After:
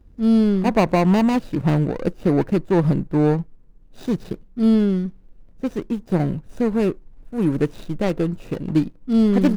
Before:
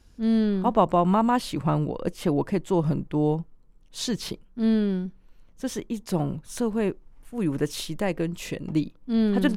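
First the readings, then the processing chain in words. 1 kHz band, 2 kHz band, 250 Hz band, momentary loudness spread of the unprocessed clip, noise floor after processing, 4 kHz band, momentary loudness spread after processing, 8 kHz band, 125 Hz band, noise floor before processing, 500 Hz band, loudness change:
−0.5 dB, +4.0 dB, +6.0 dB, 11 LU, −48 dBFS, −2.5 dB, 11 LU, can't be measured, +6.5 dB, −55 dBFS, +4.5 dB, +5.5 dB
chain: running median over 41 samples
level +6.5 dB

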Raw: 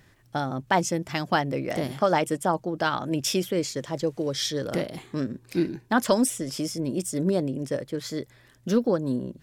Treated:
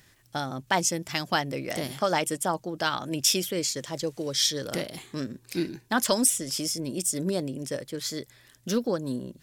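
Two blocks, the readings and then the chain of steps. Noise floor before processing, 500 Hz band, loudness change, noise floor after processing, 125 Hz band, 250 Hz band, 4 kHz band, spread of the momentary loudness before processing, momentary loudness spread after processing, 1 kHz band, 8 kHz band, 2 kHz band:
−58 dBFS, −4.0 dB, −1.0 dB, −60 dBFS, −4.5 dB, −4.5 dB, +4.5 dB, 8 LU, 11 LU, −3.0 dB, +6.5 dB, −0.5 dB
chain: high-shelf EQ 2,500 Hz +12 dB
level −4.5 dB

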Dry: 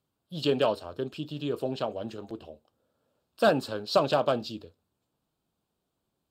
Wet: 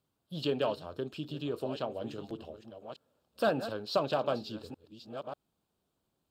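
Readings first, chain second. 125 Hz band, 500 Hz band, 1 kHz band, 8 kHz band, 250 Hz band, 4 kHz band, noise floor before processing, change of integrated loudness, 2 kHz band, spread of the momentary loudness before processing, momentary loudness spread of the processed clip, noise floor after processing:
−4.5 dB, −5.5 dB, −5.5 dB, can't be measured, −4.5 dB, −5.5 dB, −82 dBFS, −6.5 dB, −6.0 dB, 16 LU, 17 LU, −82 dBFS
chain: delay that plays each chunk backwards 593 ms, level −13 dB
in parallel at +2 dB: downward compressor, threshold −37 dBFS, peak gain reduction 18.5 dB
on the sum: dynamic equaliser 8,000 Hz, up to −5 dB, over −47 dBFS, Q 0.82
level −7.5 dB

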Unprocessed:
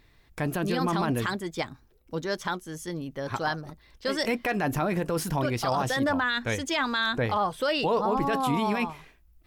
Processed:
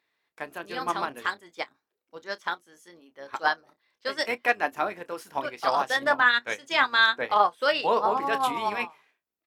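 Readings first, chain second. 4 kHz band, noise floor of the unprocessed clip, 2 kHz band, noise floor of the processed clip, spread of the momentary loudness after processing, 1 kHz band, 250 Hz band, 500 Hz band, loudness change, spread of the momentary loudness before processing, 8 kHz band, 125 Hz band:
+2.5 dB, −60 dBFS, +5.5 dB, below −85 dBFS, 17 LU, +3.5 dB, −11.5 dB, −1.0 dB, +2.5 dB, 10 LU, −6.5 dB, −20.5 dB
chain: sub-octave generator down 1 octave, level −5 dB
high-pass filter 380 Hz 12 dB per octave
parametric band 1,700 Hz +5.5 dB 2.9 octaves
double-tracking delay 29 ms −10 dB
expander for the loud parts 2.5 to 1, over −32 dBFS
level +3.5 dB

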